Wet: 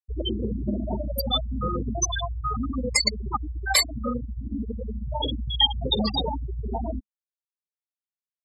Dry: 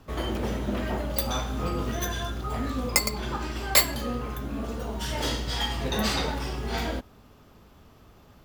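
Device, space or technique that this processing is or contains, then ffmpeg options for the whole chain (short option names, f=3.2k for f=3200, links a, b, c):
mastering chain: -af "lowpass=11k,afftfilt=real='re*gte(hypot(re,im),0.141)':imag='im*gte(hypot(re,im),0.141)':win_size=1024:overlap=0.75,equalizer=f=210:t=o:w=0.27:g=3.5,acompressor=threshold=-33dB:ratio=1.5,tiltshelf=f=850:g=-6.5,alimiter=level_in=17.5dB:limit=-1dB:release=50:level=0:latency=1,volume=-7dB"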